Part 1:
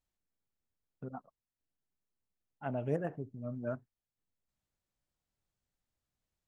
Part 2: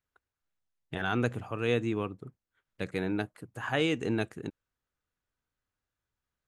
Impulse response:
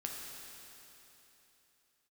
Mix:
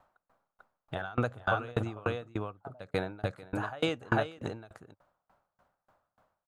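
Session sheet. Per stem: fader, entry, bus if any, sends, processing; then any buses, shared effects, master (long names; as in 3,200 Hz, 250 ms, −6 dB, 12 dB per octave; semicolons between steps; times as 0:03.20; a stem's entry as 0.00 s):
−15.5 dB, 0.00 s, no send, no echo send, upward compression, threshold −54 dBFS; multiband upward and downward compressor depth 70%
+3.0 dB, 0.00 s, no send, echo send −3.5 dB, graphic EQ with 15 bands 100 Hz +8 dB, 1,000 Hz −5 dB, 4,000 Hz +6 dB; brickwall limiter −20 dBFS, peak gain reduction 5 dB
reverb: not used
echo: single-tap delay 444 ms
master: flat-topped bell 890 Hz +13.5 dB; tremolo with a ramp in dB decaying 3.4 Hz, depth 30 dB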